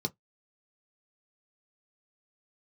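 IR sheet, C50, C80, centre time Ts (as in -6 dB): 31.0 dB, 46.0 dB, 4 ms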